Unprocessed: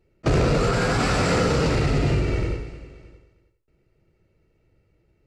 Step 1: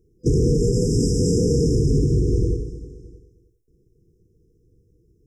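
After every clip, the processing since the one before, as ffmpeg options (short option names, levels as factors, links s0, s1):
-af "afftfilt=real='re*(1-between(b*sr/4096,500,5000))':imag='im*(1-between(b*sr/4096,500,5000))':win_size=4096:overlap=0.75,alimiter=limit=0.178:level=0:latency=1:release=227,volume=1.78"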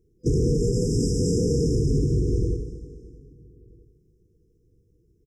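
-filter_complex "[0:a]asplit=2[s0][s1];[s1]adelay=1283,volume=0.0398,highshelf=f=4000:g=-28.9[s2];[s0][s2]amix=inputs=2:normalize=0,volume=0.668"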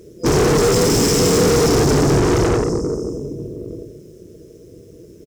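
-filter_complex "[0:a]tremolo=f=170:d=0.4,asplit=2[s0][s1];[s1]highpass=f=720:p=1,volume=63.1,asoftclip=type=tanh:threshold=0.211[s2];[s0][s2]amix=inputs=2:normalize=0,lowpass=f=5800:p=1,volume=0.501,asplit=2[s3][s4];[s4]adelay=28,volume=0.251[s5];[s3][s5]amix=inputs=2:normalize=0,volume=1.78"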